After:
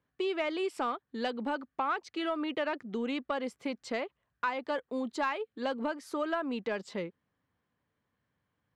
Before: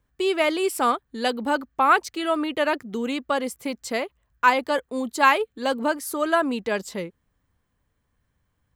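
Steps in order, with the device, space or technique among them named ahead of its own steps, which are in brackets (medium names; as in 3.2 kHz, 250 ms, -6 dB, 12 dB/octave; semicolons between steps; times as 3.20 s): AM radio (band-pass 140–4100 Hz; compression 4:1, threshold -25 dBFS, peak gain reduction 11.5 dB; saturation -15.5 dBFS, distortion -25 dB); trim -4 dB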